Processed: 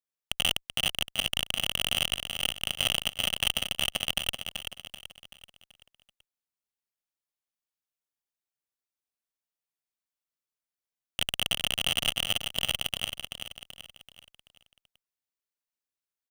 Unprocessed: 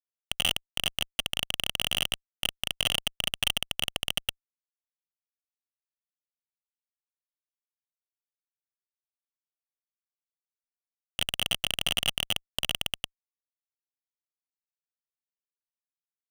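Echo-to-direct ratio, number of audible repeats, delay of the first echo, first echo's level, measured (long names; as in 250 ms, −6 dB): −6.0 dB, 4, 383 ms, −7.0 dB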